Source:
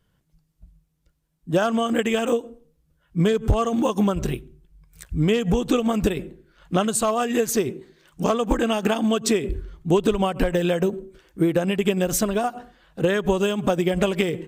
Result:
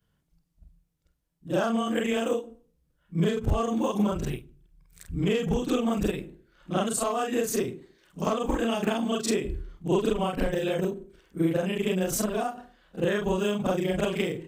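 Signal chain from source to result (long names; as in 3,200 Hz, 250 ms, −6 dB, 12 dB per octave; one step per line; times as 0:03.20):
every overlapping window played backwards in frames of 97 ms
level −2 dB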